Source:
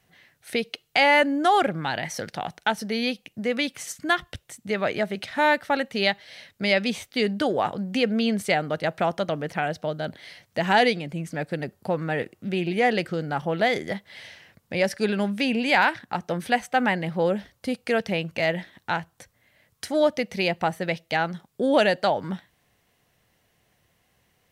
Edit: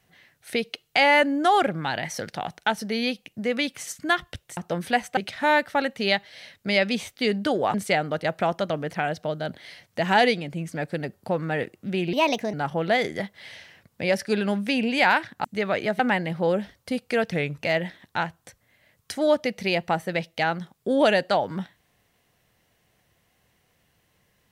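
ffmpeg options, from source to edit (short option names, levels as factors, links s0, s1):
-filter_complex "[0:a]asplit=10[s0][s1][s2][s3][s4][s5][s6][s7][s8][s9];[s0]atrim=end=4.572[s10];[s1]atrim=start=16.158:end=16.762[s11];[s2]atrim=start=5.118:end=7.692[s12];[s3]atrim=start=8.328:end=12.724[s13];[s4]atrim=start=12.72:end=13.25,asetpts=PTS-STARTPTS,asetrate=57771,aresample=44100[s14];[s5]atrim=start=13.246:end=16.162[s15];[s6]atrim=start=4.568:end=5.122[s16];[s7]atrim=start=16.758:end=18.094[s17];[s8]atrim=start=18.09:end=18.34,asetpts=PTS-STARTPTS,asetrate=38808,aresample=44100,atrim=end_sample=12528,asetpts=PTS-STARTPTS[s18];[s9]atrim=start=18.336[s19];[s10][s11]acrossfade=d=0.004:c1=hsin:c2=hsin[s20];[s20][s12]acrossfade=d=0.004:c1=hsin:c2=hsin[s21];[s21][s13]acrossfade=d=0.004:c1=hsin:c2=hsin[s22];[s22][s14]acrossfade=d=0.004:c1=hsin:c2=hsin[s23];[s23][s15]acrossfade=d=0.004:c1=hsin:c2=hsin[s24];[s24][s16]acrossfade=d=0.004:c1=hsin:c2=hsin[s25];[s25][s17]acrossfade=d=0.004:c1=hsin:c2=hsin[s26];[s26][s18]acrossfade=d=0.004:c1=hsin:c2=hsin[s27];[s27][s19]acrossfade=d=0.004:c1=hsin:c2=hsin"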